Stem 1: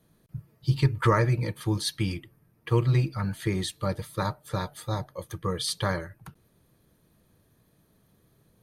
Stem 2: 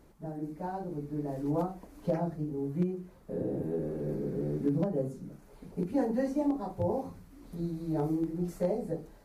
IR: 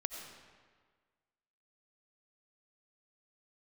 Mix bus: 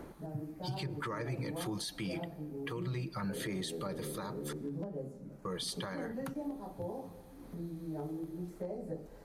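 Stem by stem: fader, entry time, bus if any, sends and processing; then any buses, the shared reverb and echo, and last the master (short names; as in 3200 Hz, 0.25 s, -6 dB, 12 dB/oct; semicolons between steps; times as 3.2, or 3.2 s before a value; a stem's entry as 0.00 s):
+2.0 dB, 0.00 s, muted 4.53–5.45, send -21 dB, HPF 140 Hz 24 dB/oct; compressor 3:1, threshold -36 dBFS, peak gain reduction 13.5 dB
-5.5 dB, 0.00 s, send -12 dB, three-band squash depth 70%; auto duck -8 dB, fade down 0.20 s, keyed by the first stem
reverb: on, RT60 1.6 s, pre-delay 50 ms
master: limiter -29.5 dBFS, peak gain reduction 10.5 dB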